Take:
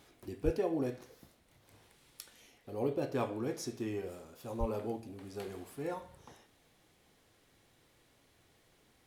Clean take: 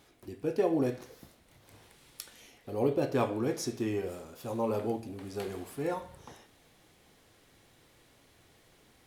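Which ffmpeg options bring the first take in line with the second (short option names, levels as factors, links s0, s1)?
-filter_complex "[0:a]asplit=3[s0][s1][s2];[s0]afade=t=out:st=0.44:d=0.02[s3];[s1]highpass=f=140:w=0.5412,highpass=f=140:w=1.3066,afade=t=in:st=0.44:d=0.02,afade=t=out:st=0.56:d=0.02[s4];[s2]afade=t=in:st=0.56:d=0.02[s5];[s3][s4][s5]amix=inputs=3:normalize=0,asplit=3[s6][s7][s8];[s6]afade=t=out:st=4.59:d=0.02[s9];[s7]highpass=f=140:w=0.5412,highpass=f=140:w=1.3066,afade=t=in:st=4.59:d=0.02,afade=t=out:st=4.71:d=0.02[s10];[s8]afade=t=in:st=4.71:d=0.02[s11];[s9][s10][s11]amix=inputs=3:normalize=0,asetnsamples=n=441:p=0,asendcmd='0.58 volume volume 5.5dB',volume=1"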